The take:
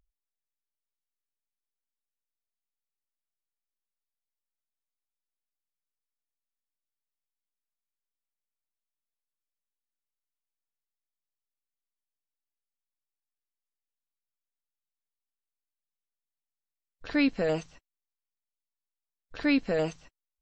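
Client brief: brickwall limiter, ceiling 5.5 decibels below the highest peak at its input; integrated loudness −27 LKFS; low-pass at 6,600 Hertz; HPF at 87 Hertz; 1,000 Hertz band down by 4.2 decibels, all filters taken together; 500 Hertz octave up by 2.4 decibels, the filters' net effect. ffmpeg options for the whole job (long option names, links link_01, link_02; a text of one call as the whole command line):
ffmpeg -i in.wav -af "highpass=87,lowpass=6600,equalizer=frequency=500:width_type=o:gain=5,equalizer=frequency=1000:width_type=o:gain=-9,volume=3.5dB,alimiter=limit=-17dB:level=0:latency=1" out.wav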